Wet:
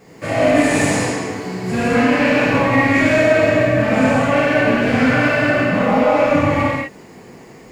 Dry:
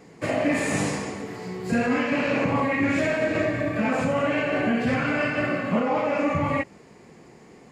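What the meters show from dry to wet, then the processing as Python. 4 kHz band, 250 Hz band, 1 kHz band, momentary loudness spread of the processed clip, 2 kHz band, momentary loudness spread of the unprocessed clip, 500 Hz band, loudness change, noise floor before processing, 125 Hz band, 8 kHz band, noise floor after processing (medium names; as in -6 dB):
+9.5 dB, +8.0 dB, +9.0 dB, 8 LU, +9.5 dB, 6 LU, +9.5 dB, +9.0 dB, -50 dBFS, +9.0 dB, +9.0 dB, -41 dBFS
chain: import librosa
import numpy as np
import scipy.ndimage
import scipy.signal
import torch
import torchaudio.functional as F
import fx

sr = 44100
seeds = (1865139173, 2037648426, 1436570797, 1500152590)

y = np.clip(x, -10.0 ** (-18.5 / 20.0), 10.0 ** (-18.5 / 20.0))
y = fx.quant_dither(y, sr, seeds[0], bits=12, dither='triangular')
y = fx.rev_gated(y, sr, seeds[1], gate_ms=270, shape='flat', drr_db=-7.5)
y = F.gain(torch.from_numpy(y), 1.0).numpy()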